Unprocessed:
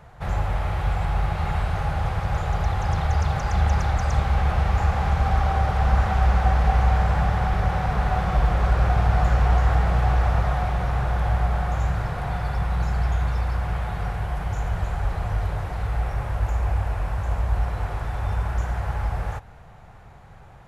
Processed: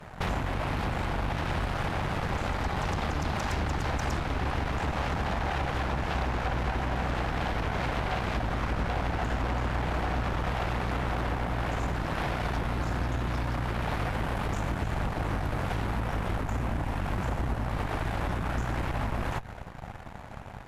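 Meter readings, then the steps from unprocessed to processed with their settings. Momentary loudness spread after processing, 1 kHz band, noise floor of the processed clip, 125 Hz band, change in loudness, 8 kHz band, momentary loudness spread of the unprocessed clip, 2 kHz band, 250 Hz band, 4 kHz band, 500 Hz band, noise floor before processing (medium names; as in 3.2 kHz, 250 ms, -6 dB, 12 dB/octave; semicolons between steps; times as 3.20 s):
2 LU, -5.0 dB, -42 dBFS, -8.5 dB, -7.0 dB, no reading, 8 LU, -1.5 dB, 0.0 dB, +1.0 dB, -2.0 dB, -45 dBFS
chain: compression 6:1, threshold -31 dBFS, peak gain reduction 16.5 dB; Chebyshev shaper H 8 -7 dB, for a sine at -22 dBFS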